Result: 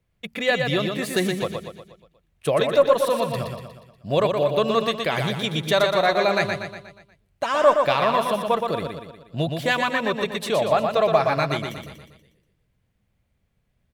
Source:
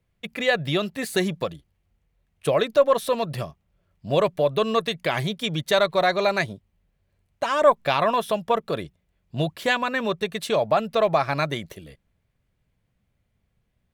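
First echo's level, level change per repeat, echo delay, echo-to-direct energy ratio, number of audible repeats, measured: -5.0 dB, -6.0 dB, 120 ms, -4.0 dB, 5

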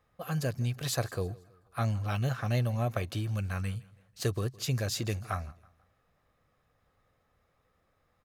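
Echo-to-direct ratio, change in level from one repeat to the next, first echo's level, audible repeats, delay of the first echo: -21.5 dB, -7.5 dB, -22.5 dB, 2, 163 ms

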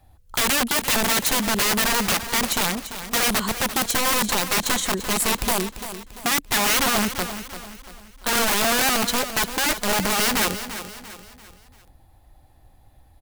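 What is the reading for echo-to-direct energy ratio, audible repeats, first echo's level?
-10.5 dB, 4, -11.5 dB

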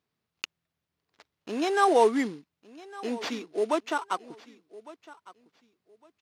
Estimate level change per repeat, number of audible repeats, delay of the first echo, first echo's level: -13.0 dB, 2, 1157 ms, -19.5 dB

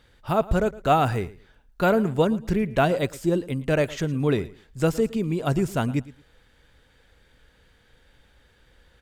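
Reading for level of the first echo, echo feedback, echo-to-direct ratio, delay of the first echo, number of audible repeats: -19.0 dB, 22%, -19.0 dB, 112 ms, 2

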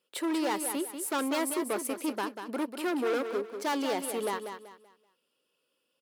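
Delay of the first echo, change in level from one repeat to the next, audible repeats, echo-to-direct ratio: 191 ms, -10.0 dB, 3, -7.5 dB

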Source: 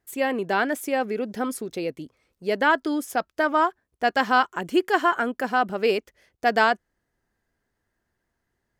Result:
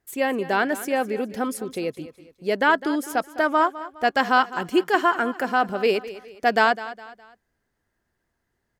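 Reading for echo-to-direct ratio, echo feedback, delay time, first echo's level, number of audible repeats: -15.0 dB, 38%, 206 ms, -15.5 dB, 3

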